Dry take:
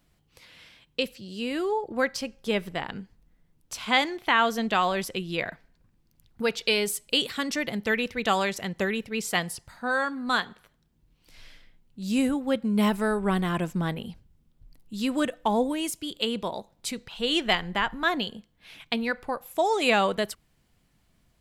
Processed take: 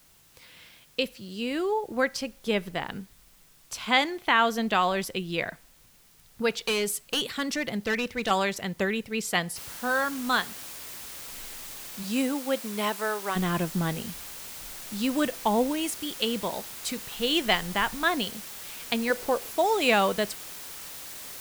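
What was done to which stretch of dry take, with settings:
0:06.63–0:08.31: hard clipping −22.5 dBFS
0:09.56: noise floor change −59 dB −41 dB
0:12.02–0:13.35: high-pass filter 230 Hz → 620 Hz
0:19.10–0:19.51: parametric band 450 Hz +9 dB 0.86 octaves

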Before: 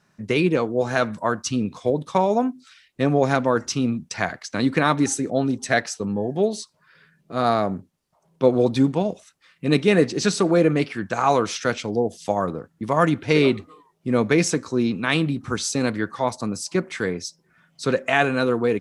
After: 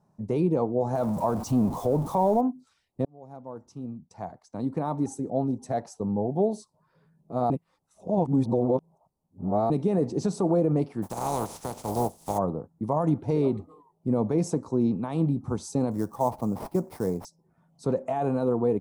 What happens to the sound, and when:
0:00.95–0:02.41: converter with a step at zero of −25.5 dBFS
0:03.05–0:06.52: fade in
0:07.50–0:09.70: reverse
0:11.02–0:12.37: compressing power law on the bin magnitudes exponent 0.32
0:15.91–0:17.25: sample-rate reduction 7,200 Hz, jitter 20%
whole clip: brickwall limiter −12.5 dBFS; drawn EQ curve 160 Hz 0 dB, 340 Hz −3 dB, 550 Hz −2 dB, 870 Hz +2 dB, 1,600 Hz −22 dB, 2,900 Hz −23 dB, 10,000 Hz −10 dB

